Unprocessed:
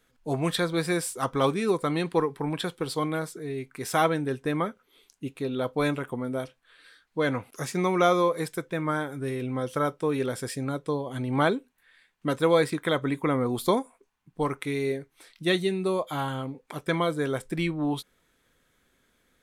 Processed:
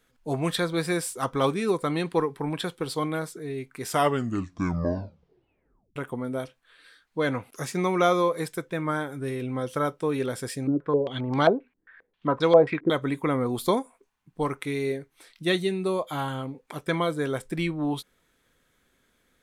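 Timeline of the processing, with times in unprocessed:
3.83 tape stop 2.13 s
10.67–12.9 stepped low-pass 7.5 Hz 320–5100 Hz

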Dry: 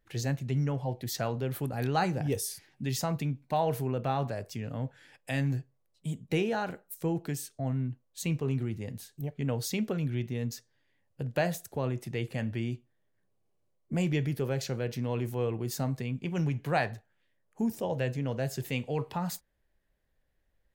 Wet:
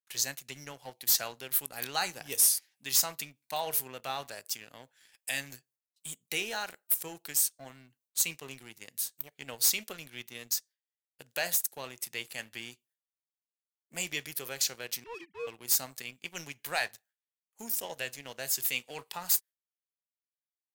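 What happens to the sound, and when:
15.04–15.47 sine-wave speech
whole clip: gate with hold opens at -59 dBFS; differentiator; sample leveller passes 2; gain +6 dB

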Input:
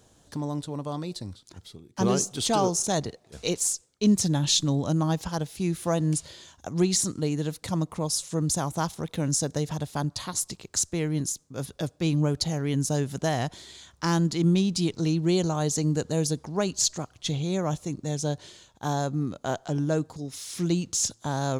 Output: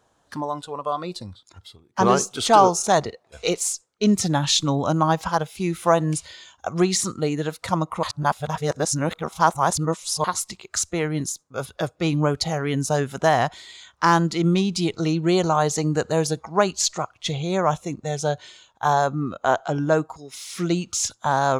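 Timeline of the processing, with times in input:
8.03–10.24 reverse
whole clip: spectral noise reduction 11 dB; bell 1100 Hz +14 dB 2.3 oct

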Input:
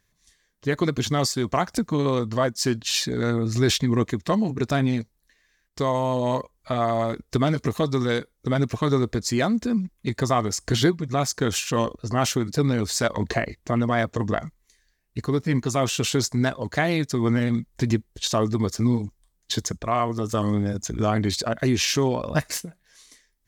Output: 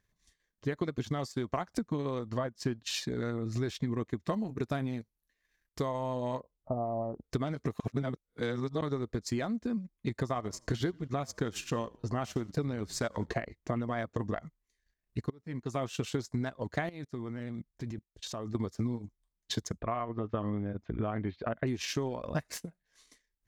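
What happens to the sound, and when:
2.38–2.79 tone controls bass +3 dB, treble -7 dB
4.29–5.87 bell 12000 Hz +11 dB 0.6 oct
6.4–7.24 steep low-pass 920 Hz
7.8–8.81 reverse
10.25–13.31 frequency-shifting echo 88 ms, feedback 44%, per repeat -45 Hz, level -21 dB
15.3–15.85 fade in quadratic, from -18 dB
16.89–18.55 level quantiser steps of 16 dB
19.79–21.67 LPF 3000 Hz 24 dB/oct
whole clip: high shelf 3100 Hz -6.5 dB; compressor 3:1, threshold -25 dBFS; transient shaper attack +3 dB, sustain -9 dB; gain -6.5 dB

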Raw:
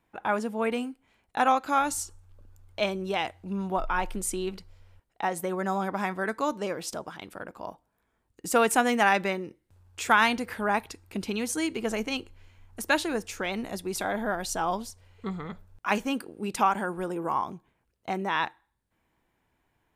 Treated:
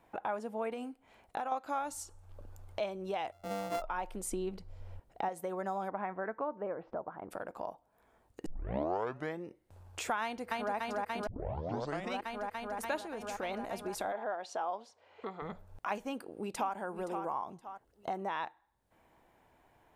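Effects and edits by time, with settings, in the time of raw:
0.73–1.52 compressor, threshold -27 dBFS
3.32–3.82 sample sorter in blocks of 64 samples
4.32–5.29 low shelf 390 Hz +10 dB
5.9–7.3 LPF 2500 Hz -> 1400 Hz 24 dB/oct
8.46 tape start 1.00 s
10.22–10.75 echo throw 0.29 s, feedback 85%, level -2 dB
11.27 tape start 0.93 s
13–13.43 compressor, threshold -30 dBFS
14.12–15.42 BPF 380–4000 Hz
16.09–16.74 echo throw 0.52 s, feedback 20%, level -11 dB
17.54–18.23 notch 2400 Hz, Q 5.8
whole clip: bell 670 Hz +9.5 dB 1.4 oct; compressor 2.5:1, threshold -46 dBFS; gain +3 dB

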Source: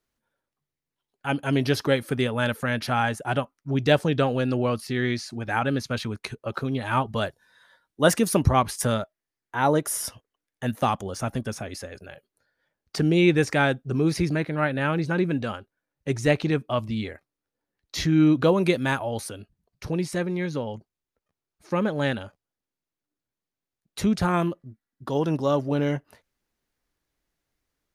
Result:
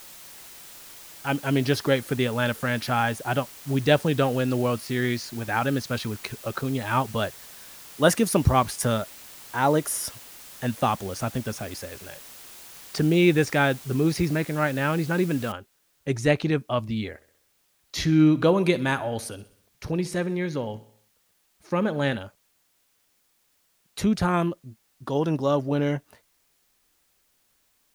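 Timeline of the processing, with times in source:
15.52 noise floor step -45 dB -68 dB
17.09–22.17 feedback echo 64 ms, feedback 54%, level -18 dB

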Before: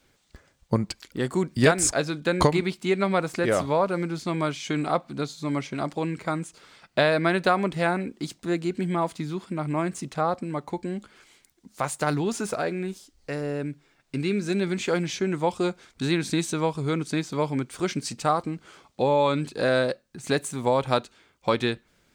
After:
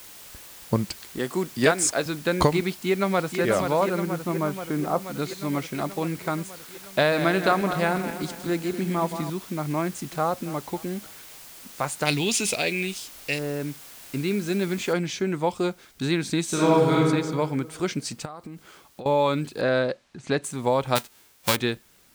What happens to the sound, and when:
1.18–2.06 Bessel high-pass 210 Hz
2.7–3.41 echo throw 0.48 s, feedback 75%, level -6 dB
4–5 LPF 2100 Hz -> 1200 Hz
7–9.3 regenerating reverse delay 0.123 s, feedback 64%, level -9 dB
9.84–10.27 echo throw 0.28 s, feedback 45%, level -17 dB
12.05–13.39 resonant high shelf 1900 Hz +10.5 dB, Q 3
14.93 noise floor step -45 dB -59 dB
16.45–16.94 reverb throw, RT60 1.6 s, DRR -6.5 dB
18.25–19.06 compressor 12:1, threshold -34 dBFS
19.61–20.44 air absorption 100 m
20.95–21.55 spectral whitening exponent 0.3

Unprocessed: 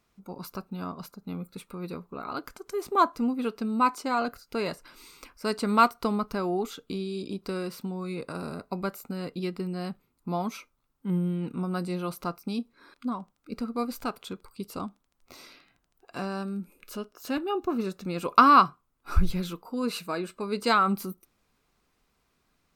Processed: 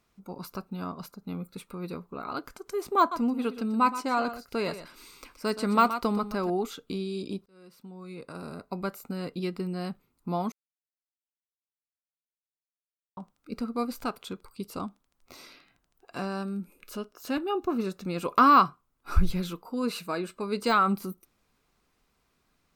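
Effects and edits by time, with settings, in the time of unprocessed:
2.99–6.5 echo 0.123 s -12.5 dB
7.46–9.06 fade in
10.52–13.17 mute
whole clip: de-esser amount 75%

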